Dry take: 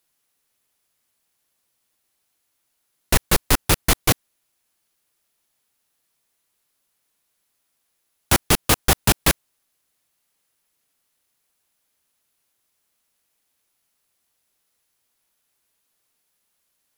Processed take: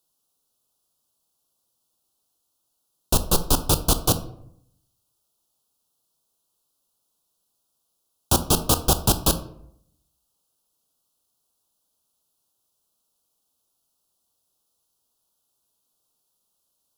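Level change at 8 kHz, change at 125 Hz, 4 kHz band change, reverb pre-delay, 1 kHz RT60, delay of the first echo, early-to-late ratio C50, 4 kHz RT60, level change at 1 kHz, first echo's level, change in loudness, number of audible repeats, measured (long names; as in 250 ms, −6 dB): −1.5 dB, −1.0 dB, −2.5 dB, 17 ms, 0.70 s, no echo audible, 13.5 dB, 0.40 s, −2.0 dB, no echo audible, −2.0 dB, no echo audible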